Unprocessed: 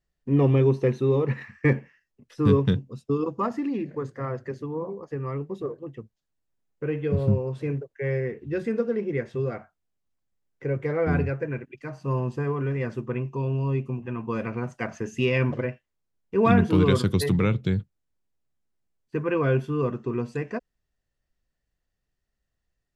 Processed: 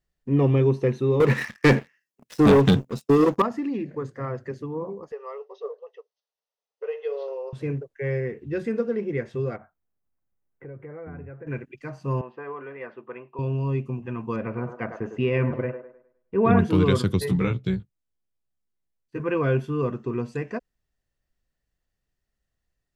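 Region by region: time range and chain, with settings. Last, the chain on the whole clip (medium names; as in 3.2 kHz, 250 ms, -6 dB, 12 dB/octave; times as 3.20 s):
1.20–3.42 s: high-pass 170 Hz + treble shelf 6.2 kHz +9.5 dB + waveshaping leveller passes 3
5.12–7.53 s: brick-wall FIR band-pass 400–6400 Hz + peaking EQ 1.6 kHz -9.5 dB 0.34 oct + band-stop 2.3 kHz, Q 6.1
9.56–11.47 s: Butterworth band-stop 5.3 kHz, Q 0.51 + compression 3:1, threshold -41 dBFS
12.21–13.39 s: band-pass 560–4300 Hz + distance through air 360 m
14.36–16.59 s: Bessel low-pass 1.9 kHz + feedback echo behind a band-pass 103 ms, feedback 35%, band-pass 730 Hz, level -6 dB
17.19–19.20 s: AM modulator 31 Hz, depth 30% + doubling 16 ms -2.5 dB + upward expansion, over -30 dBFS
whole clip: none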